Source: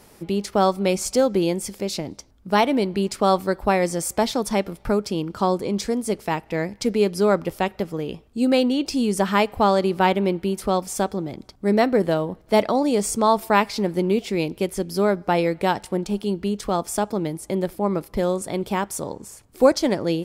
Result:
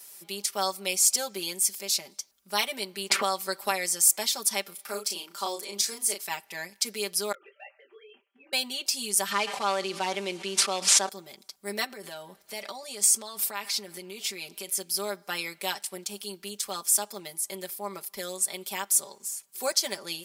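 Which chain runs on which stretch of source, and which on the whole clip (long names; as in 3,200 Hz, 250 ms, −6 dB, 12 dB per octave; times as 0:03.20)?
0:03.10–0:03.71: high-shelf EQ 12,000 Hz −6.5 dB + multiband upward and downward compressor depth 100%
0:04.74–0:06.26: high-pass filter 260 Hz + double-tracking delay 35 ms −5 dB
0:07.32–0:08.53: three sine waves on the formant tracks + downward compressor 4 to 1, threshold −30 dBFS + micro pitch shift up and down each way 24 cents
0:09.31–0:11.09: variable-slope delta modulation 64 kbit/s + band-pass filter 170–4,700 Hz + envelope flattener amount 70%
0:11.84–0:14.70: high-shelf EQ 11,000 Hz −5.5 dB + downward compressor, threshold −22 dBFS + transient designer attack +1 dB, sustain +5 dB
whole clip: first difference; comb filter 5.1 ms, depth 93%; level +4.5 dB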